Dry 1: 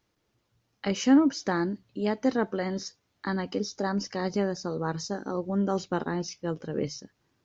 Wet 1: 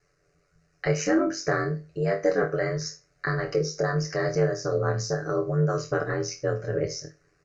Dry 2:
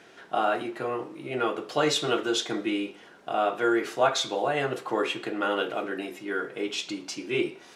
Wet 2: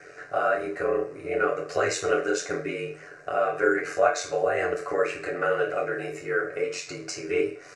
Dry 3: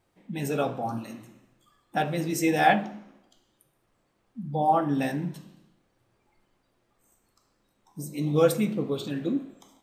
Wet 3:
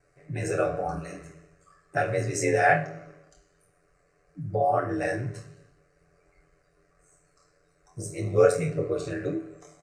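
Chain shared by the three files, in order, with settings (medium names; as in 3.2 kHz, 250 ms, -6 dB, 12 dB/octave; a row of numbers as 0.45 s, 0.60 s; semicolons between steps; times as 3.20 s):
on a send: flutter echo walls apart 4.3 m, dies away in 0.26 s; on the sum: ring modulator 45 Hz; low-pass 8.5 kHz 24 dB/octave; comb 6.9 ms, depth 57%; in parallel at +2 dB: compression, threshold -34 dBFS; on the sum: static phaser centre 910 Hz, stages 6; normalise loudness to -27 LUFS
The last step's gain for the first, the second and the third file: +4.0 dB, +1.5 dB, +2.0 dB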